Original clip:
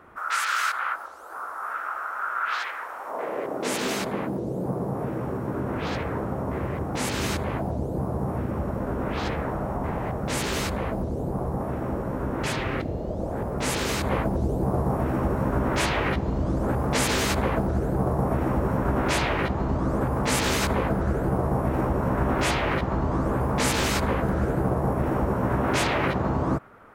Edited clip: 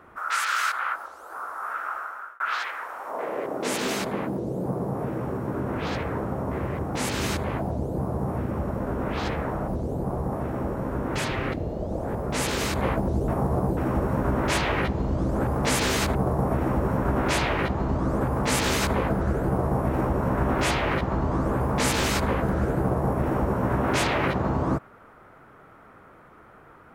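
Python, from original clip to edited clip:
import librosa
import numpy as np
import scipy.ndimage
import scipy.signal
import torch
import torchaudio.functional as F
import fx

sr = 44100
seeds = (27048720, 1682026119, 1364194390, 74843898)

y = fx.edit(x, sr, fx.fade_out_span(start_s=1.94, length_s=0.46),
    fx.cut(start_s=9.68, length_s=1.28),
    fx.reverse_span(start_s=14.56, length_s=0.49),
    fx.cut(start_s=17.43, length_s=0.52), tone=tone)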